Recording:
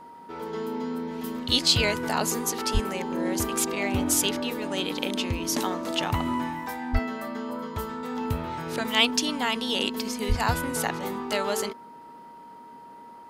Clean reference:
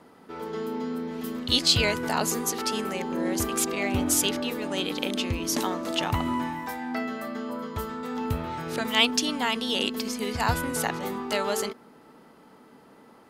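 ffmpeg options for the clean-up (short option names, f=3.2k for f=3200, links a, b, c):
-filter_complex "[0:a]bandreject=f=940:w=30,asplit=3[a][b][c];[a]afade=t=out:st=2.73:d=0.02[d];[b]highpass=f=140:w=0.5412,highpass=f=140:w=1.3066,afade=t=in:st=2.73:d=0.02,afade=t=out:st=2.85:d=0.02[e];[c]afade=t=in:st=2.85:d=0.02[f];[d][e][f]amix=inputs=3:normalize=0,asplit=3[g][h][i];[g]afade=t=out:st=6.92:d=0.02[j];[h]highpass=f=140:w=0.5412,highpass=f=140:w=1.3066,afade=t=in:st=6.92:d=0.02,afade=t=out:st=7.04:d=0.02[k];[i]afade=t=in:st=7.04:d=0.02[l];[j][k][l]amix=inputs=3:normalize=0,asplit=3[m][n][o];[m]afade=t=out:st=10.28:d=0.02[p];[n]highpass=f=140:w=0.5412,highpass=f=140:w=1.3066,afade=t=in:st=10.28:d=0.02,afade=t=out:st=10.4:d=0.02[q];[o]afade=t=in:st=10.4:d=0.02[r];[p][q][r]amix=inputs=3:normalize=0"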